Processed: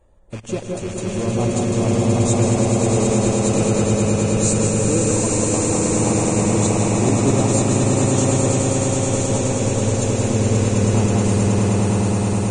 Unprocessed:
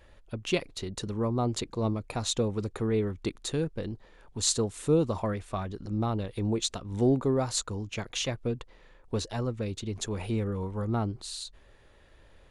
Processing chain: rattling part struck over -40 dBFS, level -23 dBFS; band shelf 2800 Hz -14.5 dB 2.3 oct; in parallel at -9 dB: companded quantiser 2-bit; on the sum: swelling echo 0.106 s, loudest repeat 8, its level -5 dB; on a send at -3 dB: reverb RT60 0.35 s, pre-delay 0.15 s; on the sum: dynamic EQ 6200 Hz, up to +4 dB, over -45 dBFS, Q 1.4; Vorbis 16 kbps 22050 Hz

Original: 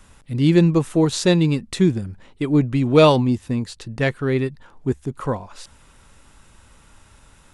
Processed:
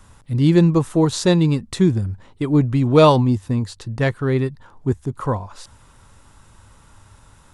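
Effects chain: fifteen-band EQ 100 Hz +8 dB, 1000 Hz +4 dB, 2500 Hz -4 dB

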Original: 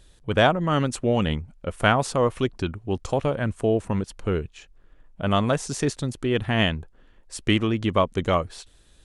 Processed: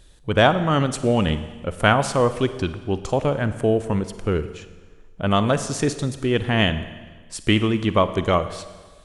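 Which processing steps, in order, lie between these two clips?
Schroeder reverb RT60 1.4 s, DRR 11.5 dB; gain +2.5 dB

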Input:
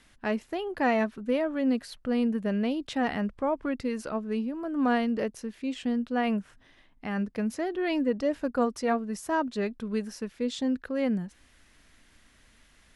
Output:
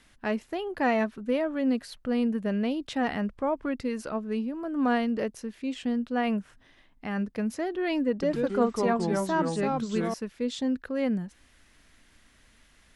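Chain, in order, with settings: 8.11–10.14 echoes that change speed 0.114 s, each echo -3 st, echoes 2

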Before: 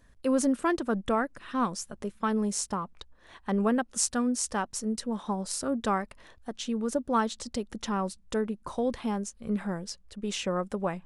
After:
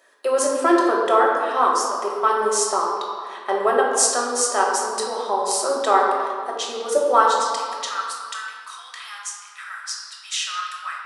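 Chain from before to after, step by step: elliptic high-pass 370 Hz, stop band 80 dB, from 7.22 s 1300 Hz; dynamic EQ 2500 Hz, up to -4 dB, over -52 dBFS, Q 2.4; reverb RT60 2.1 s, pre-delay 3 ms, DRR -2.5 dB; gain +8.5 dB

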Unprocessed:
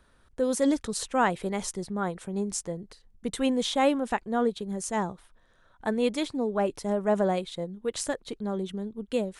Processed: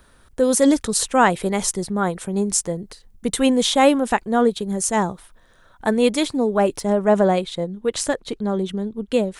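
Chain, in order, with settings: high shelf 8800 Hz +9.5 dB, from 6.8 s -2 dB; gain +8.5 dB

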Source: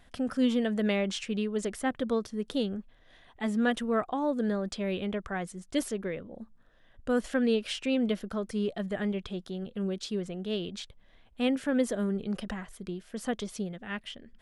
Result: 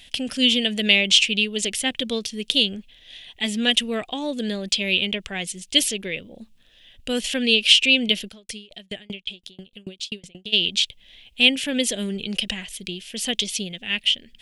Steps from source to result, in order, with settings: resonant high shelf 1900 Hz +13.5 dB, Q 3; 8.27–10.52 dB-ramp tremolo decaying 4 Hz -> 9.8 Hz, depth 34 dB; gain +2.5 dB

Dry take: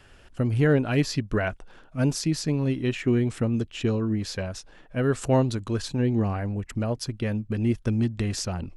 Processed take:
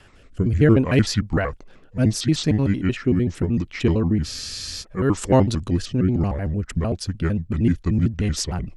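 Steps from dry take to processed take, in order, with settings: trilling pitch shifter -5 st, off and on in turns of 76 ms; rotary speaker horn 0.7 Hz, later 7 Hz, at 5.87; spectral freeze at 4.27, 0.55 s; gain +6.5 dB

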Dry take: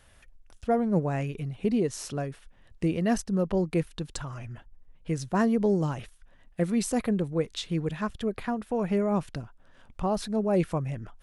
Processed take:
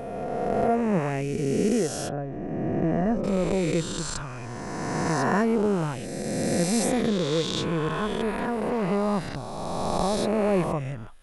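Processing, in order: spectral swells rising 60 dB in 2.74 s; 2.09–3.24 Bessel low-pass 960 Hz, order 2; 8.36–8.82 hard clip -20 dBFS, distortion -33 dB; gain -1 dB

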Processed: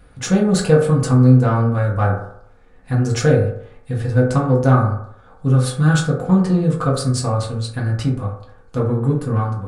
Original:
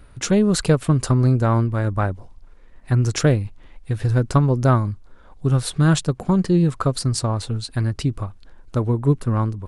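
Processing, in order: in parallel at -6 dB: soft clip -18.5 dBFS, distortion -9 dB; on the sum: reverb RT60 0.70 s, pre-delay 3 ms, DRR -5 dB; gain -6 dB

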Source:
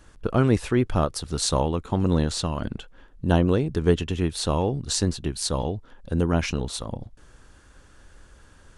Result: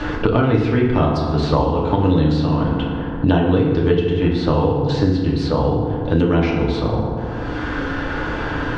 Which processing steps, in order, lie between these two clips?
LPF 4100 Hz 24 dB/oct; in parallel at -2 dB: level quantiser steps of 22 dB; on the sum: FDN reverb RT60 1.3 s, low-frequency decay 1×, high-frequency decay 0.5×, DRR -3.5 dB; three-band squash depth 100%; gain -2.5 dB

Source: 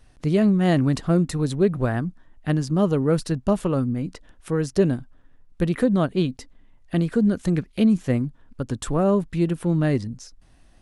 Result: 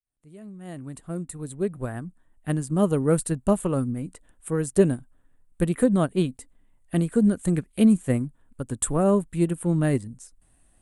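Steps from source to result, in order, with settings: opening faded in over 2.99 s; resonant high shelf 6800 Hz +9 dB, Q 3; upward expander 1.5:1, over -32 dBFS; gain +1.5 dB

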